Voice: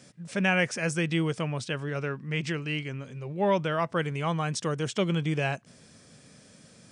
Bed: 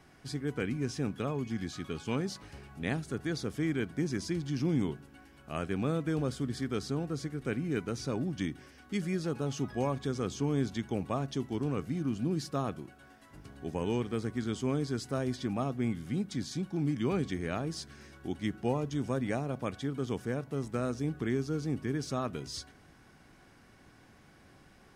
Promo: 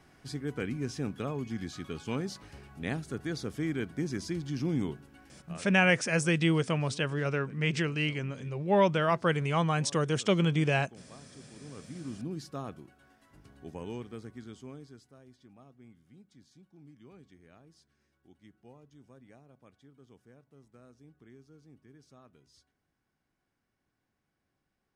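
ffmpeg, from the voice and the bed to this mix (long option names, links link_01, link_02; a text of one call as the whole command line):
ffmpeg -i stem1.wav -i stem2.wav -filter_complex "[0:a]adelay=5300,volume=1dB[link_01];[1:a]volume=12.5dB,afade=type=out:start_time=5.34:duration=0.3:silence=0.11885,afade=type=in:start_time=11.58:duration=0.58:silence=0.211349,afade=type=out:start_time=13.56:duration=1.58:silence=0.133352[link_02];[link_01][link_02]amix=inputs=2:normalize=0" out.wav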